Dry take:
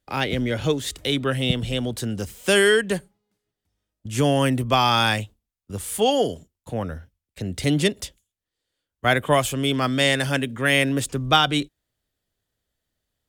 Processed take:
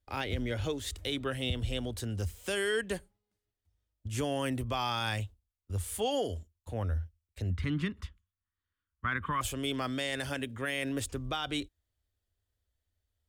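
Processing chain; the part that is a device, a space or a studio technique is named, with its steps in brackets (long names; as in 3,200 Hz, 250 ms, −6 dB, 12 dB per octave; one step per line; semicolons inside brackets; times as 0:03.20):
car stereo with a boomy subwoofer (low shelf with overshoot 110 Hz +8 dB, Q 3; brickwall limiter −13.5 dBFS, peak gain reduction 10.5 dB)
0:07.50–0:09.41: drawn EQ curve 110 Hz 0 dB, 180 Hz +8 dB, 700 Hz −18 dB, 1,100 Hz +10 dB, 8,000 Hz −19 dB
level −9 dB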